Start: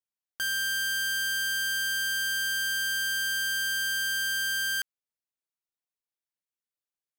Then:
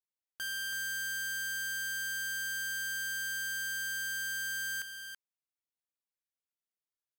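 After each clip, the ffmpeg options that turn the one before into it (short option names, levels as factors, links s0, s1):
-af "aecho=1:1:329:0.422,volume=0.398"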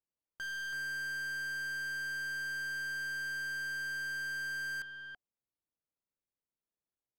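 -af "adynamicsmooth=sensitivity=5.5:basefreq=930,aeval=exprs='0.0158*(cos(1*acos(clip(val(0)/0.0158,-1,1)))-cos(1*PI/2))+0.002*(cos(5*acos(clip(val(0)/0.0158,-1,1)))-cos(5*PI/2))':c=same,bandreject=f=730:w=16,volume=1.26"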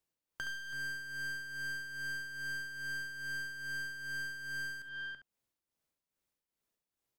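-filter_complex "[0:a]acrossover=split=310[s0][s1];[s1]acompressor=threshold=0.00355:ratio=4[s2];[s0][s2]amix=inputs=2:normalize=0,tremolo=f=2.4:d=0.61,asplit=2[s3][s4];[s4]aecho=0:1:39|69:0.15|0.355[s5];[s3][s5]amix=inputs=2:normalize=0,volume=2.51"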